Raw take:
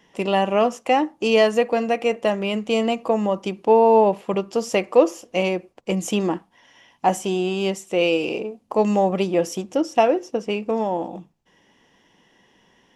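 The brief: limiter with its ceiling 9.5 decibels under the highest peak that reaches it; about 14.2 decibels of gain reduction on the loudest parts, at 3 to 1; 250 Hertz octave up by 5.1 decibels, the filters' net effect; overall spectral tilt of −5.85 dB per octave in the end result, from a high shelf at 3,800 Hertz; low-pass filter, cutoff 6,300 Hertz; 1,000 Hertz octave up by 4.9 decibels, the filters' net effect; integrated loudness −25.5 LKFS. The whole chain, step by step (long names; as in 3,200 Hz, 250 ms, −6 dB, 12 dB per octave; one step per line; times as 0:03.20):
low-pass filter 6,300 Hz
parametric band 250 Hz +6.5 dB
parametric band 1,000 Hz +6.5 dB
high-shelf EQ 3,800 Hz −7 dB
downward compressor 3 to 1, threshold −27 dBFS
level +6 dB
brickwall limiter −15 dBFS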